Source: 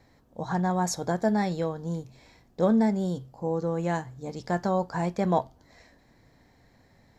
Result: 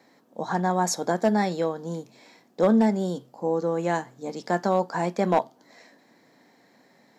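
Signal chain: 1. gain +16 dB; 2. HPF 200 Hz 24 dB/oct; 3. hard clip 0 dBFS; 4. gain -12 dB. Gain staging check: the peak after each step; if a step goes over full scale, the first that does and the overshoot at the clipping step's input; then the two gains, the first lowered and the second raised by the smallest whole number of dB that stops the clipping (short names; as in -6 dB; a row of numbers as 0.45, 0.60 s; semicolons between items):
+5.0, +4.5, 0.0, -12.0 dBFS; step 1, 4.5 dB; step 1 +11 dB, step 4 -7 dB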